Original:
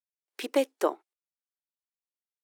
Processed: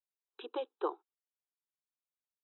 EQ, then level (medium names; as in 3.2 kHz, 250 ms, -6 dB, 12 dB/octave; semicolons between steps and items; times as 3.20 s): brick-wall FIR band-pass 240–4000 Hz; static phaser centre 410 Hz, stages 8; -5.0 dB